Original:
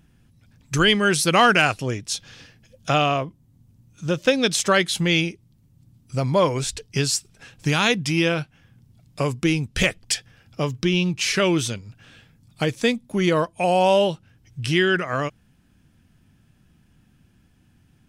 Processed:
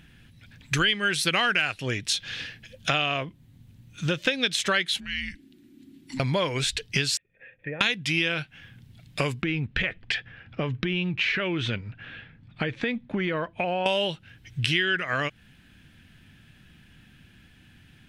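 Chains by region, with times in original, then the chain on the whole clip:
0:04.98–0:06.20: downward compressor 10 to 1, threshold −35 dBFS + frequency shifter −390 Hz
0:07.17–0:07.81: formant resonators in series e + treble cut that deepens with the level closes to 800 Hz, closed at −34 dBFS
0:09.42–0:13.86: low-pass filter 2,000 Hz + downward compressor, threshold −24 dBFS
whole clip: flat-topped bell 2,500 Hz +10 dB; downward compressor 4 to 1, threshold −27 dBFS; level +3 dB

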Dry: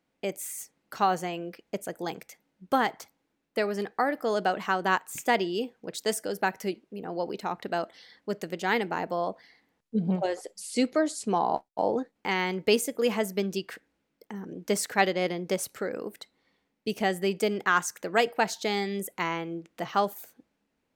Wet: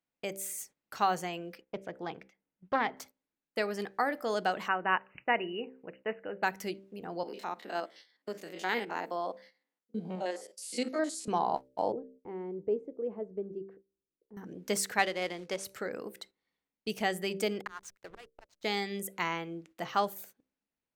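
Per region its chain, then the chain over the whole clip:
0:01.61–0:02.97: high-frequency loss of the air 250 metres + notch filter 4,300 Hz, Q 13 + highs frequency-modulated by the lows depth 0.16 ms
0:04.68–0:06.43: linear-phase brick-wall low-pass 3,000 Hz + low-shelf EQ 340 Hz −4.5 dB + one half of a high-frequency compander decoder only
0:07.23–0:11.28: spectrum averaged block by block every 50 ms + high-pass filter 220 Hz 24 dB per octave
0:11.92–0:14.37: low-pass with resonance 350 Hz, resonance Q 2.5 + parametric band 240 Hz −12 dB 1.3 octaves
0:14.99–0:15.65: high-pass filter 360 Hz 6 dB per octave + floating-point word with a short mantissa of 2 bits + high-frequency loss of the air 69 metres
0:17.61–0:18.64: meter weighting curve A + volume swells 684 ms + slack as between gear wheels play −42 dBFS
whole clip: hum removal 64.82 Hz, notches 9; noise gate −50 dBFS, range −12 dB; parametric band 310 Hz −4 dB 2.9 octaves; level −1.5 dB

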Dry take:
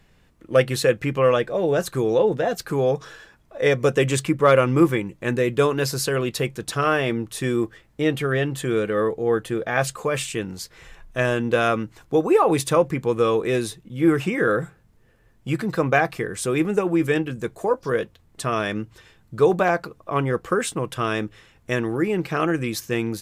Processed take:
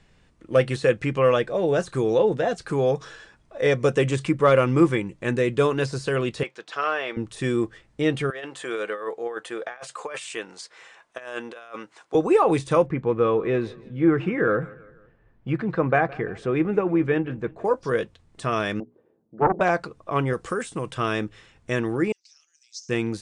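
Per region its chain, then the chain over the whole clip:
0:06.43–0:07.17: de-essing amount 85% + band-pass filter 620–4,900 Hz
0:08.30–0:12.15: high-pass filter 820 Hz + compressor whose output falls as the input rises −31 dBFS, ratio −0.5 + tilt shelving filter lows +5 dB, about 1,100 Hz
0:12.86–0:17.65: low-pass filter 2,000 Hz + repeating echo 165 ms, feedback 48%, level −21.5 dB
0:18.80–0:19.61: flat-topped band-pass 360 Hz, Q 1 + mains-hum notches 60/120/180/240/300/360/420 Hz + highs frequency-modulated by the lows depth 0.78 ms
0:20.33–0:20.91: high-shelf EQ 5,300 Hz +12 dB + downward compressor 2 to 1, threshold −24 dBFS
0:22.12–0:22.89: downward compressor 4 to 1, threshold −23 dBFS + flat-topped band-pass 5,700 Hz, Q 3
whole clip: de-essing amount 70%; elliptic low-pass filter 9,400 Hz, stop band 40 dB

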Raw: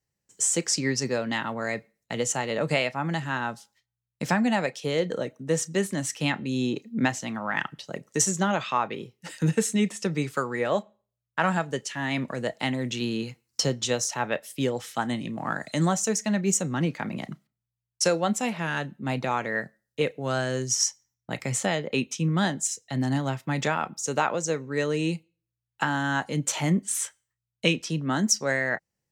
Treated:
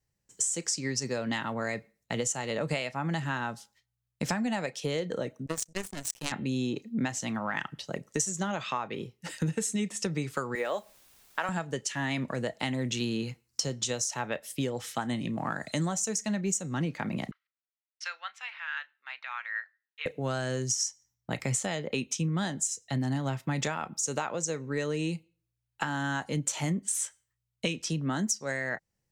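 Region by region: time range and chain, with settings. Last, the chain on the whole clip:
0:05.46–0:06.32: high-shelf EQ 6,900 Hz +8.5 dB + power curve on the samples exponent 3 + envelope flattener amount 50%
0:10.55–0:11.49: high-pass filter 390 Hz + bit-depth reduction 10 bits, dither triangular
0:17.31–0:20.06: high-pass filter 1,400 Hz 24 dB per octave + high-frequency loss of the air 310 metres
whole clip: dynamic equaliser 7,500 Hz, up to +7 dB, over −42 dBFS, Q 0.81; downward compressor, threshold −28 dBFS; low-shelf EQ 70 Hz +10.5 dB

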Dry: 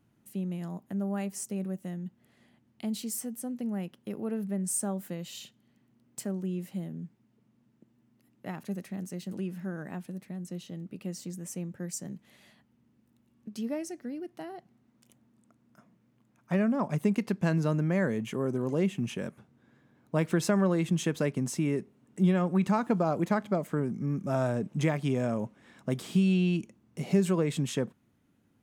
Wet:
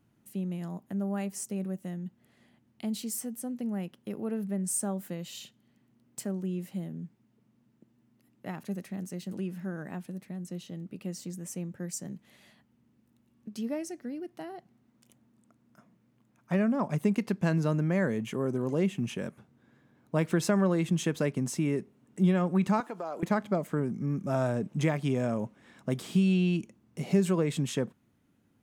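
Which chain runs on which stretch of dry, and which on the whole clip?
0:22.80–0:23.23: downward compressor, threshold −28 dBFS + high-pass filter 440 Hz
whole clip: no processing

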